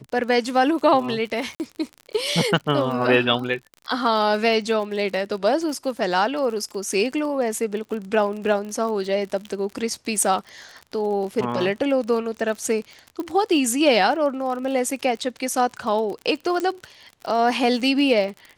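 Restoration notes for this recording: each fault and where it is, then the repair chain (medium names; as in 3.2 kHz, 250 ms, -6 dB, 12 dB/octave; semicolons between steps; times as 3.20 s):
crackle 45 per s -30 dBFS
1.55–1.60 s: dropout 49 ms
13.20 s: pop -18 dBFS
16.60 s: pop -14 dBFS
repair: de-click; interpolate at 1.55 s, 49 ms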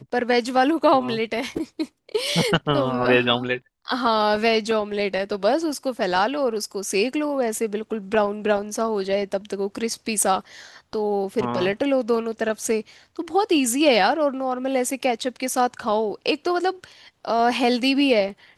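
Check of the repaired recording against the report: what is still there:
nothing left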